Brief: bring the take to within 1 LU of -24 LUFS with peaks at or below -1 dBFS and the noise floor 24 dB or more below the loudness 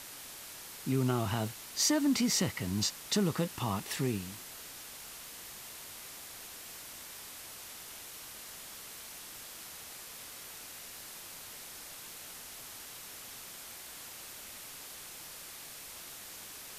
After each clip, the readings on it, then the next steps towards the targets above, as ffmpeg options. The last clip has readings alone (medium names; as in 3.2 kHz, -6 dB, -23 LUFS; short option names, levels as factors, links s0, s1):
noise floor -48 dBFS; noise floor target -62 dBFS; loudness -37.5 LUFS; peak level -15.0 dBFS; loudness target -24.0 LUFS
-> -af "afftdn=nr=14:nf=-48"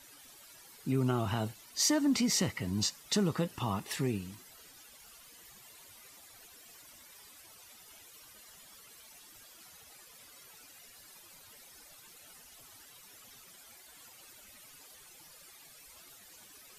noise floor -56 dBFS; loudness -32.0 LUFS; peak level -15.5 dBFS; loudness target -24.0 LUFS
-> -af "volume=2.51"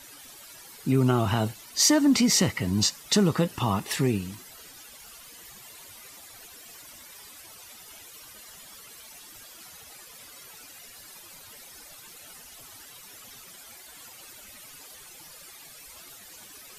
loudness -24.0 LUFS; peak level -7.5 dBFS; noise floor -48 dBFS